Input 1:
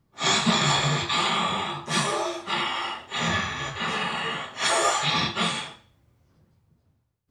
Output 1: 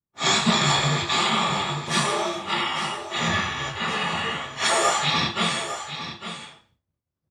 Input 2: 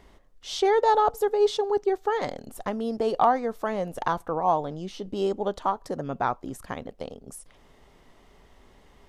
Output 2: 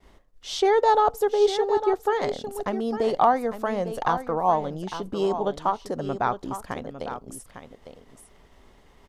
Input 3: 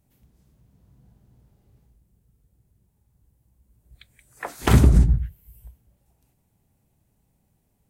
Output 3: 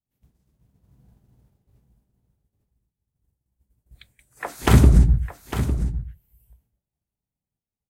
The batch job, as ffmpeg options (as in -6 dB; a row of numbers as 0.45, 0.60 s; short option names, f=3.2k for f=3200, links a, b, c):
-filter_complex "[0:a]agate=range=-33dB:threshold=-52dB:ratio=3:detection=peak,asplit=2[a][b];[b]aecho=0:1:854:0.299[c];[a][c]amix=inputs=2:normalize=0,volume=1.5dB"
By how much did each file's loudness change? +1.5, +1.5, 0.0 LU